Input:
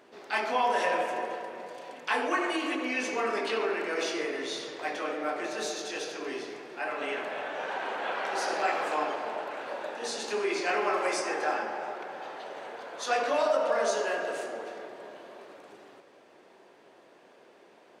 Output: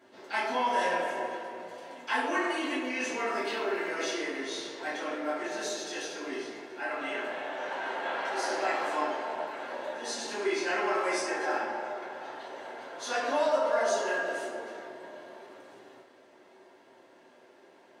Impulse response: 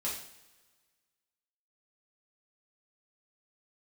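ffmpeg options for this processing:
-filter_complex "[0:a]asettb=1/sr,asplit=3[a][b][c];[a]atrim=end=3.304[d];[b]atrim=start=3.3:end=3.88,asetpts=PTS-STARTPTS,afade=t=in:d=0.004:c=qsin,afade=t=out:st=0.576:d=0.004:c=qsin,aeval=exprs='sgn(val(0))*max(abs(val(0))-0.00168,0)':c=same[e];[c]atrim=start=3.876[f];[d][e]acrossfade=d=0.004:c1=hsin:c2=qsin[g];[g][f]acrossfade=d=0.004:c1=qsin:c2=hsin[h];[1:a]atrim=start_sample=2205,asetrate=70560,aresample=44100[i];[h][i]afir=irnorm=-1:irlink=0"

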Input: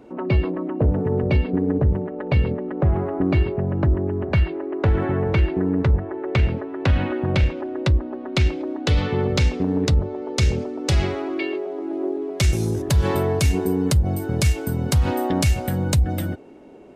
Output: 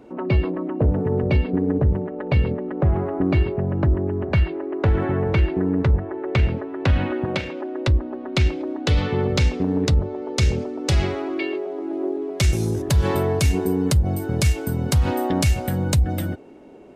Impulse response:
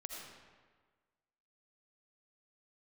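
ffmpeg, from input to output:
-filter_complex "[0:a]asettb=1/sr,asplit=3[a][b][c];[a]atrim=end=7.254[d];[b]atrim=start=7.25:end=7.88,asetpts=PTS-STARTPTS,afade=t=in:d=0.004:c=qsin,afade=t=out:st=0.626:d=0.004:c=qsin,highpass=220[e];[c]atrim=start=7.876[f];[d][e]acrossfade=d=0.004:c1=hsin:c2=qsin[g];[g][f]acrossfade=d=0.004:c1=qsin:c2=hsin"

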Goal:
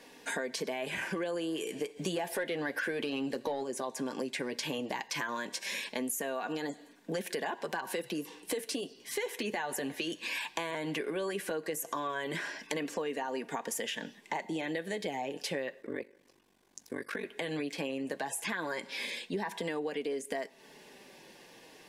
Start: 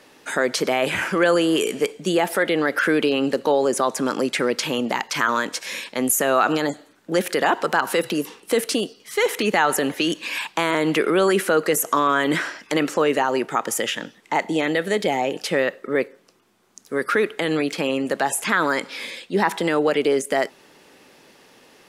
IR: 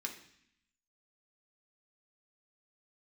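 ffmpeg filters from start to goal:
-filter_complex "[0:a]asuperstop=centerf=1300:order=4:qfactor=4.9,asplit=2[a][b];[1:a]atrim=start_sample=2205[c];[b][c]afir=irnorm=-1:irlink=0,volume=-20dB[d];[a][d]amix=inputs=2:normalize=0,asplit=3[e][f][g];[e]afade=t=out:st=1.96:d=0.02[h];[f]acontrast=73,afade=t=in:st=1.96:d=0.02,afade=t=out:st=3.62:d=0.02[i];[g]afade=t=in:st=3.62:d=0.02[j];[h][i][j]amix=inputs=3:normalize=0,flanger=delay=4.2:depth=4.1:regen=-38:speed=0.15:shape=sinusoidal,acompressor=threshold=-33dB:ratio=6,asettb=1/sr,asplit=3[k][l][m];[k]atrim=end=15.814[n];[l]atrim=start=15.81:end=17.25,asetpts=PTS-STARTPTS,afade=t=in:d=0.004:c=qsin,afade=t=out:st=1.436:d=0.004:c=qsin,aeval=exprs='val(0)*sin(2*PI*24*n/s)':c=same[o];[m]atrim=start=17.246[p];[n][o]acrossfade=d=0.004:c1=hsin:c2=qsin[q];[q][p]acrossfade=d=0.004:c1=qsin:c2=hsin"

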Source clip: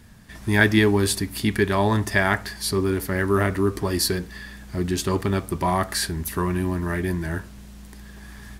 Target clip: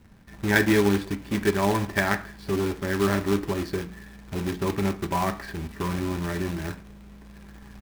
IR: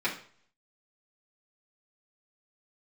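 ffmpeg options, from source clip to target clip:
-filter_complex "[0:a]adynamicsmooth=sensitivity=0.5:basefreq=1.4k,acrusher=bits=2:mode=log:mix=0:aa=0.000001,asplit=2[a][b];[1:a]atrim=start_sample=2205[c];[b][c]afir=irnorm=-1:irlink=0,volume=-14dB[d];[a][d]amix=inputs=2:normalize=0,atempo=1.1,volume=-4.5dB"

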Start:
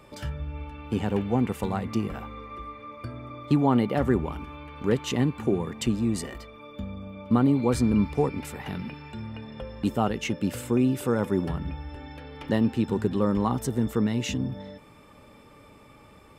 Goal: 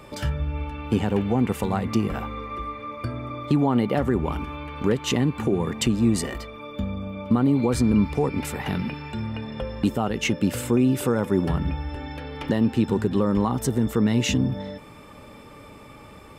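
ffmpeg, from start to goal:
-af "alimiter=limit=-18dB:level=0:latency=1:release=204,volume=7dB"

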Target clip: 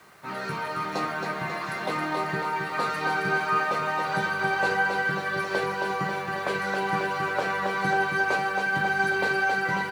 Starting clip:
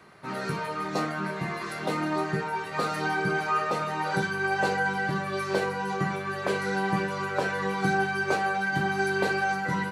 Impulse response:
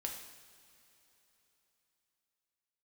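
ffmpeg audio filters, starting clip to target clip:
-filter_complex "[0:a]acrossover=split=590|4600[a][b][c];[b]acontrast=36[d];[a][d][c]amix=inputs=3:normalize=0,acrusher=bits=8:mix=0:aa=0.000001,aecho=1:1:271|542|813|1084|1355|1626|1897|2168:0.562|0.326|0.189|0.11|0.0636|0.0369|0.0214|0.0124,volume=-4dB"

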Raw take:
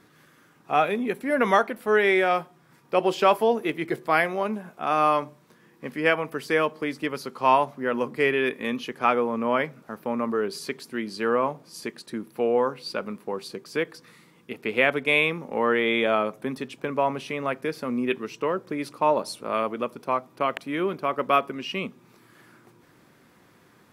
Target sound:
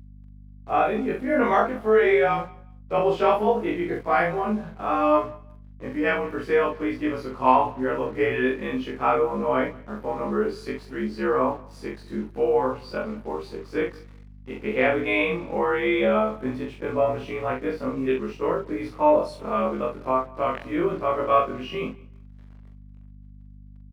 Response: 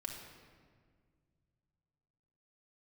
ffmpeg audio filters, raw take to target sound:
-filter_complex "[0:a]afftfilt=real='re':imag='-im':win_size=2048:overlap=0.75,acrusher=bits=7:mix=0:aa=0.5,lowpass=f=1.3k:p=1,acontrast=42,highpass=f=44:w=0.5412,highpass=f=44:w=1.3066,asplit=2[a][b];[b]adelay=43,volume=-4.5dB[c];[a][c]amix=inputs=2:normalize=0,asplit=2[d][e];[e]aecho=0:1:181|362:0.0631|0.0133[f];[d][f]amix=inputs=2:normalize=0,aeval=exprs='val(0)+0.00631*(sin(2*PI*50*n/s)+sin(2*PI*2*50*n/s)/2+sin(2*PI*3*50*n/s)/3+sin(2*PI*4*50*n/s)/4+sin(2*PI*5*50*n/s)/5)':c=same"

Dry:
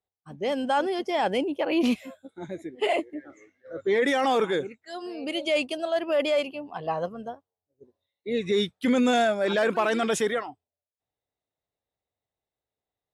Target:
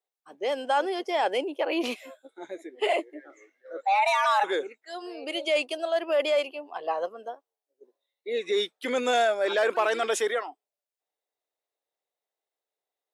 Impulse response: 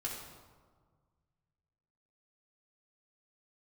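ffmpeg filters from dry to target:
-filter_complex "[0:a]asplit=3[a][b][c];[a]afade=t=out:st=3.82:d=0.02[d];[b]afreqshift=390,afade=t=in:st=3.82:d=0.02,afade=t=out:st=4.43:d=0.02[e];[c]afade=t=in:st=4.43:d=0.02[f];[d][e][f]amix=inputs=3:normalize=0,highpass=f=360:w=0.5412,highpass=f=360:w=1.3066"

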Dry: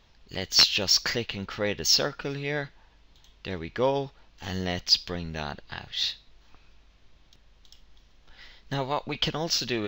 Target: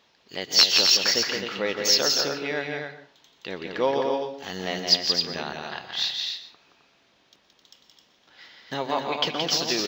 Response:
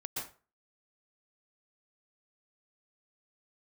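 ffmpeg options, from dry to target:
-filter_complex "[0:a]highpass=250,aecho=1:1:172|262.4:0.562|0.501,asplit=2[a][b];[1:a]atrim=start_sample=2205[c];[b][c]afir=irnorm=-1:irlink=0,volume=-10dB[d];[a][d]amix=inputs=2:normalize=0"

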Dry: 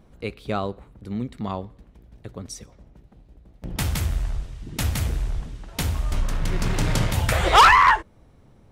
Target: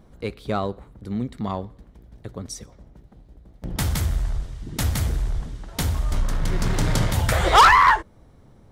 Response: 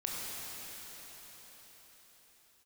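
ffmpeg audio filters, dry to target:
-filter_complex "[0:a]asplit=2[a][b];[b]asoftclip=type=hard:threshold=-24.5dB,volume=-11.5dB[c];[a][c]amix=inputs=2:normalize=0,equalizer=f=2.6k:w=3.8:g=-5.5"

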